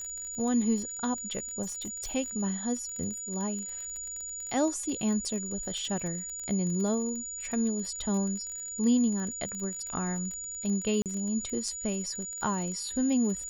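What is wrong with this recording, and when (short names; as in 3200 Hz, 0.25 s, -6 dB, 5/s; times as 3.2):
crackle 30/s -35 dBFS
tone 6900 Hz -36 dBFS
1.62–2.13 clipped -32.5 dBFS
11.02–11.06 gap 38 ms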